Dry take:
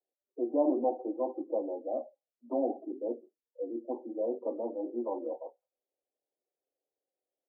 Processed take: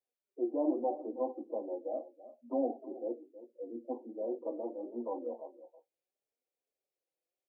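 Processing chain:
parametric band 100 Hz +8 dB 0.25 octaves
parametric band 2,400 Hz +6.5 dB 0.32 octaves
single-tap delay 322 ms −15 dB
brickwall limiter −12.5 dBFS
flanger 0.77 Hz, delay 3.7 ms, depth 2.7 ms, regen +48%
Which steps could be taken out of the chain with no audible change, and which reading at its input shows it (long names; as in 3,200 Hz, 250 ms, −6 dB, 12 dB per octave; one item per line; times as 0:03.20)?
parametric band 100 Hz: nothing at its input below 200 Hz
parametric band 2,400 Hz: nothing at its input above 1,000 Hz
brickwall limiter −12.5 dBFS: peak of its input −15.5 dBFS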